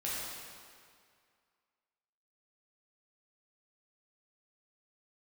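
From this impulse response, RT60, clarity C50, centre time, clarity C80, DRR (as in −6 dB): 2.1 s, −3.0 dB, 138 ms, −1.0 dB, −8.0 dB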